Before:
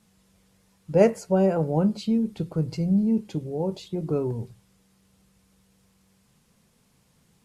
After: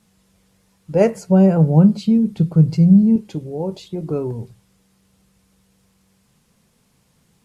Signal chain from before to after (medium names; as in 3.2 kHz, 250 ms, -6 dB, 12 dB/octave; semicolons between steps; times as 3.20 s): 1.14–3.16 s: peaking EQ 160 Hz +11.5 dB 0.89 oct; trim +3 dB